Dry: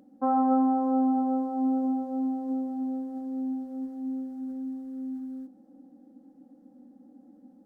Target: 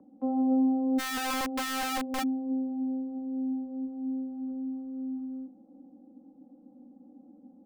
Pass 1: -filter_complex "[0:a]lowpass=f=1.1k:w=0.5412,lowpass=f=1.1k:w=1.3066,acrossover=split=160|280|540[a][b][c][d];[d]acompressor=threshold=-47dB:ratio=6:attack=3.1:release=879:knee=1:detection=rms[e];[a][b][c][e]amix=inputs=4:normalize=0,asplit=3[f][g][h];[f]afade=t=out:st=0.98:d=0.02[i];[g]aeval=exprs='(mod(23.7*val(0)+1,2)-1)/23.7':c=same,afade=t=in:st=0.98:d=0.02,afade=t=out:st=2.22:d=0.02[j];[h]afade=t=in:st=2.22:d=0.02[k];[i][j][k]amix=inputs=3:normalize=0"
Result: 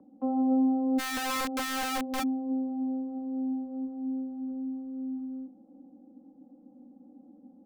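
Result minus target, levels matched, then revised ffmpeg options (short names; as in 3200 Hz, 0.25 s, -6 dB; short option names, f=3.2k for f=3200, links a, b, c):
compressor: peak gain reduction -6.5 dB
-filter_complex "[0:a]lowpass=f=1.1k:w=0.5412,lowpass=f=1.1k:w=1.3066,acrossover=split=160|280|540[a][b][c][d];[d]acompressor=threshold=-55dB:ratio=6:attack=3.1:release=879:knee=1:detection=rms[e];[a][b][c][e]amix=inputs=4:normalize=0,asplit=3[f][g][h];[f]afade=t=out:st=0.98:d=0.02[i];[g]aeval=exprs='(mod(23.7*val(0)+1,2)-1)/23.7':c=same,afade=t=in:st=0.98:d=0.02,afade=t=out:st=2.22:d=0.02[j];[h]afade=t=in:st=2.22:d=0.02[k];[i][j][k]amix=inputs=3:normalize=0"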